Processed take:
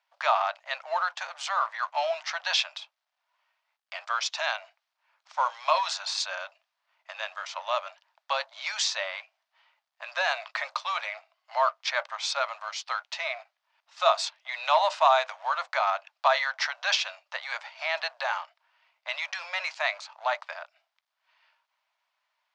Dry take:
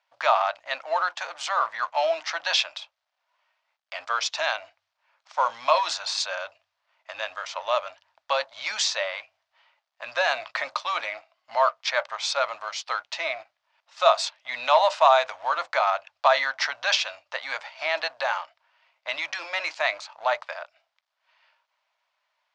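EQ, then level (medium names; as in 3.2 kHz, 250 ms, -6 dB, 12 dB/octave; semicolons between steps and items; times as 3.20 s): high-pass 620 Hz 24 dB/octave; -2.5 dB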